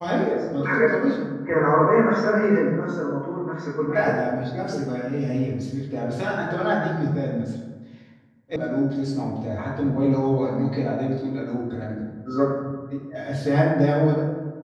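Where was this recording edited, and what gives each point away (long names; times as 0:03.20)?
0:08.56: cut off before it has died away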